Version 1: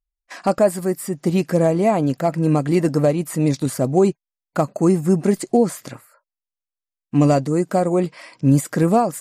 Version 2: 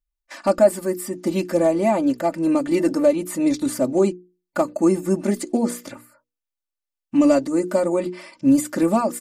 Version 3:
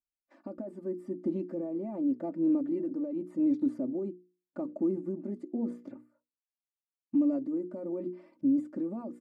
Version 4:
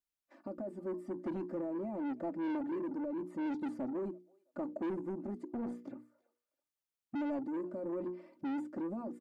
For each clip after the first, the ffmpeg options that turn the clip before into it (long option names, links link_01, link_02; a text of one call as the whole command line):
ffmpeg -i in.wav -af "bandreject=frequency=60:width_type=h:width=6,bandreject=frequency=120:width_type=h:width=6,bandreject=frequency=180:width_type=h:width=6,bandreject=frequency=240:width_type=h:width=6,bandreject=frequency=300:width_type=h:width=6,bandreject=frequency=360:width_type=h:width=6,bandreject=frequency=420:width_type=h:width=6,bandreject=frequency=480:width_type=h:width=6,aecho=1:1:3.4:0.97,volume=-3.5dB" out.wav
ffmpeg -i in.wav -af "alimiter=limit=-14.5dB:level=0:latency=1:release=43,bandpass=frequency=280:width_type=q:width=1.8:csg=0,tremolo=f=0.84:d=0.47,volume=-4dB" out.wav
ffmpeg -i in.wav -filter_complex "[0:a]acrossover=split=550[link_01][link_02];[link_01]asoftclip=type=tanh:threshold=-36.5dB[link_03];[link_02]aecho=1:1:330|660:0.0944|0.0236[link_04];[link_03][link_04]amix=inputs=2:normalize=0" out.wav